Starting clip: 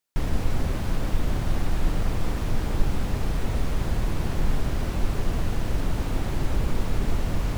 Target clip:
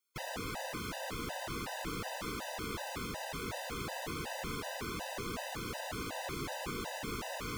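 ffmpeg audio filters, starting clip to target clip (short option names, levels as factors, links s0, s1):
-af "highpass=f=720:p=1,afftfilt=real='re*gt(sin(2*PI*2.7*pts/sr)*(1-2*mod(floor(b*sr/1024/510),2)),0)':imag='im*gt(sin(2*PI*2.7*pts/sr)*(1-2*mod(floor(b*sr/1024/510),2)),0)':win_size=1024:overlap=0.75,volume=1.19"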